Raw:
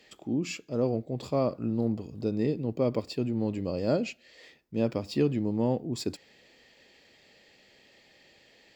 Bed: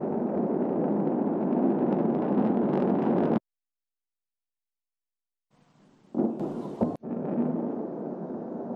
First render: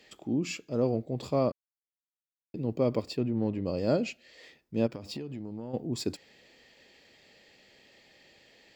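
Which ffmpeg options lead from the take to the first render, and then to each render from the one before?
-filter_complex "[0:a]asplit=3[a][b][c];[a]afade=t=out:st=3.16:d=0.02[d];[b]adynamicsmooth=sensitivity=5:basefreq=2.6k,afade=t=in:st=3.16:d=0.02,afade=t=out:st=3.65:d=0.02[e];[c]afade=t=in:st=3.65:d=0.02[f];[d][e][f]amix=inputs=3:normalize=0,asplit=3[g][h][i];[g]afade=t=out:st=4.86:d=0.02[j];[h]acompressor=threshold=-34dB:ratio=12:attack=3.2:release=140:knee=1:detection=peak,afade=t=in:st=4.86:d=0.02,afade=t=out:st=5.73:d=0.02[k];[i]afade=t=in:st=5.73:d=0.02[l];[j][k][l]amix=inputs=3:normalize=0,asplit=3[m][n][o];[m]atrim=end=1.52,asetpts=PTS-STARTPTS,afade=t=out:st=1.516:d=0.004:c=hsin[p];[n]atrim=start=1.52:end=2.54,asetpts=PTS-STARTPTS,volume=0[q];[o]atrim=start=2.54,asetpts=PTS-STARTPTS,afade=t=in:d=0.004:c=hsin[r];[p][q][r]concat=n=3:v=0:a=1"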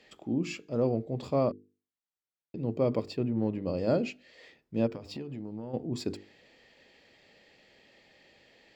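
-af "aemphasis=mode=reproduction:type=cd,bandreject=f=50:t=h:w=6,bandreject=f=100:t=h:w=6,bandreject=f=150:t=h:w=6,bandreject=f=200:t=h:w=6,bandreject=f=250:t=h:w=6,bandreject=f=300:t=h:w=6,bandreject=f=350:t=h:w=6,bandreject=f=400:t=h:w=6,bandreject=f=450:t=h:w=6"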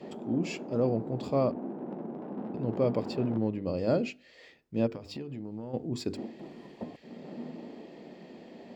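-filter_complex "[1:a]volume=-13.5dB[a];[0:a][a]amix=inputs=2:normalize=0"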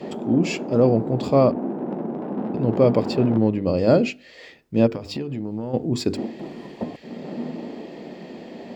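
-af "volume=10.5dB"

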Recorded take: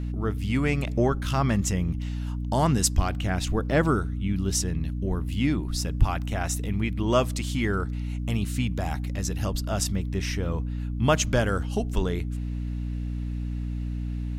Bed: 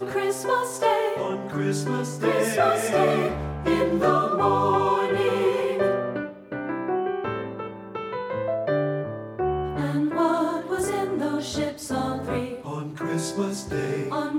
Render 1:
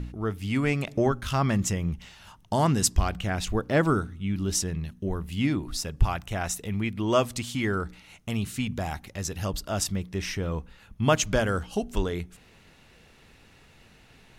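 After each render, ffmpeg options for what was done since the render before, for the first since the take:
-af "bandreject=f=60:t=h:w=4,bandreject=f=120:t=h:w=4,bandreject=f=180:t=h:w=4,bandreject=f=240:t=h:w=4,bandreject=f=300:t=h:w=4"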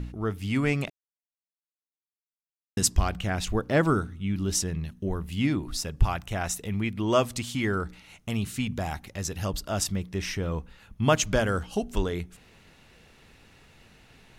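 -filter_complex "[0:a]asplit=3[a][b][c];[a]atrim=end=0.9,asetpts=PTS-STARTPTS,afade=t=out:st=0.896:d=0.004:c=hsin[d];[b]atrim=start=0.9:end=2.77,asetpts=PTS-STARTPTS,volume=0[e];[c]atrim=start=2.77,asetpts=PTS-STARTPTS,afade=t=in:d=0.004:c=hsin[f];[d][e][f]concat=n=3:v=0:a=1"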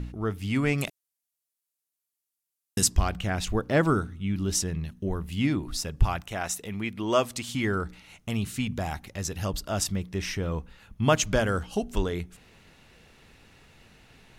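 -filter_complex "[0:a]asettb=1/sr,asplit=3[a][b][c];[a]atrim=end=0.784[d];[b]atrim=start=0.78:end=2.84,asetpts=PTS-STARTPTS,afade=t=in:d=0.004:c=qsin,afade=t=out:st=2.056:d=0.004:c=qsin,equalizer=f=12k:w=0.4:g=14.5[e];[c]atrim=start=2.836[f];[d][e]acrossfade=d=0.004:c1=hsin:c2=qsin[g];[g][f]acrossfade=d=0.004:c1=qsin:c2=hsin,asettb=1/sr,asplit=3[h][i][j];[h]atrim=end=6.224[k];[i]atrim=start=6.22:end=7.49,asetpts=PTS-STARTPTS,afade=t=in:d=0.004:c=qsin,afade=t=out:st=1.266:d=0.004:c=qsin,lowshelf=f=140:g=-11.5[l];[j]atrim=start=7.486[m];[k][l]acrossfade=d=0.004:c1=hsin:c2=qsin[n];[n][m]acrossfade=d=0.004:c1=qsin:c2=hsin"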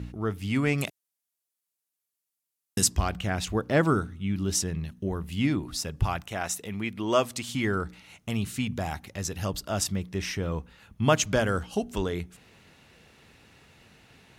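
-af "highpass=64"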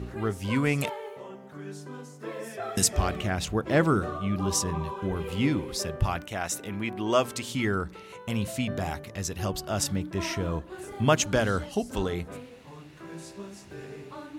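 -filter_complex "[1:a]volume=-15dB[a];[0:a][a]amix=inputs=2:normalize=0"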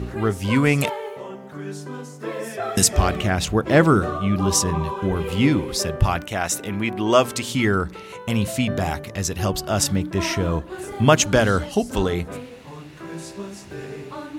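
-af "volume=7.5dB,alimiter=limit=-3dB:level=0:latency=1"

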